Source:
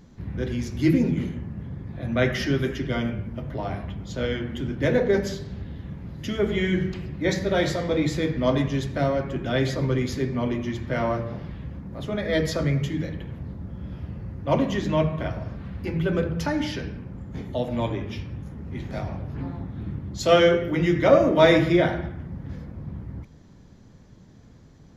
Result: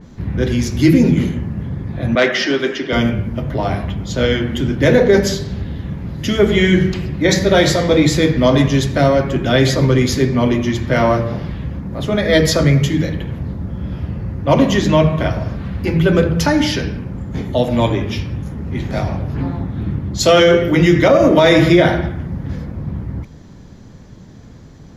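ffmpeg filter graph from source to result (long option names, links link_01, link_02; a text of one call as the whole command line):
ffmpeg -i in.wav -filter_complex "[0:a]asettb=1/sr,asplit=3[link_01][link_02][link_03];[link_01]atrim=end=2.154[link_04];[link_02]atrim=start=2.15:end=2.93,asetpts=PTS-STARTPTS,afade=type=in:duration=0.004:curve=qsin,afade=type=out:start_time=0.776:duration=0.004:curve=qsin,highpass=frequency=160:poles=1,asoftclip=type=hard:threshold=-16.5dB,acrossover=split=240 6000:gain=0.0891 1 0.0708[link_05][link_06][link_07];[link_05][link_06][link_07]amix=inputs=3:normalize=0[link_08];[link_03]atrim=start=2.926[link_09];[link_04][link_08]acrossfade=duration=0.004:curve1=hsin:curve2=qsin[link_10];[link_10][link_09]acrossfade=duration=0.004:curve1=qsin:curve2=hsin,alimiter=level_in=12dB:limit=-1dB:release=50:level=0:latency=1,adynamicequalizer=threshold=0.0251:dfrequency=3400:dqfactor=0.7:tfrequency=3400:tqfactor=0.7:attack=5:release=100:ratio=0.375:range=2.5:mode=boostabove:tftype=highshelf,volume=-1dB" out.wav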